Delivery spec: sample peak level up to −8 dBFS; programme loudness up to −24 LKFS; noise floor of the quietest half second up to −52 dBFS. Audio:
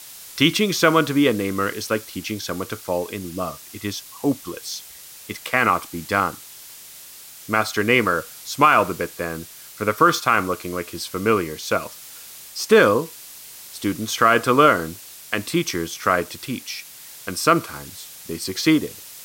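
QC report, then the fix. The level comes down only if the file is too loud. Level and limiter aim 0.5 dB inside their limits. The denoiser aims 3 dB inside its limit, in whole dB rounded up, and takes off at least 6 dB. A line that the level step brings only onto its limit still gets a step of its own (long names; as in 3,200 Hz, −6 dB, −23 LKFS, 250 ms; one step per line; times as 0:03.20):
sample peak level −3.5 dBFS: out of spec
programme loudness −21.0 LKFS: out of spec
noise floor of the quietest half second −42 dBFS: out of spec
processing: broadband denoise 10 dB, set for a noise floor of −42 dBFS
level −3.5 dB
brickwall limiter −8.5 dBFS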